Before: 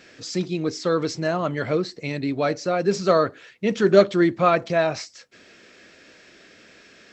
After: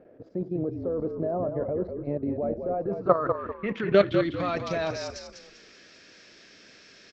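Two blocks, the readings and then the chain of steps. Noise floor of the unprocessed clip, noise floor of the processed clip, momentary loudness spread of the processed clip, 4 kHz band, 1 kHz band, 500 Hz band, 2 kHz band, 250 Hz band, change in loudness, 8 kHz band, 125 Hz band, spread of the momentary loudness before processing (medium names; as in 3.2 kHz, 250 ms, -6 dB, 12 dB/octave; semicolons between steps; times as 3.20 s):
-52 dBFS, -53 dBFS, 12 LU, -8.0 dB, -6.5 dB, -5.0 dB, -7.5 dB, -6.0 dB, -6.0 dB, under -10 dB, -5.0 dB, 11 LU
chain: low-pass sweep 600 Hz -> 5.5 kHz, 2.61–4.58 s; level held to a coarse grid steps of 13 dB; frequency-shifting echo 197 ms, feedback 34%, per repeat -48 Hz, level -6.5 dB; trim -2 dB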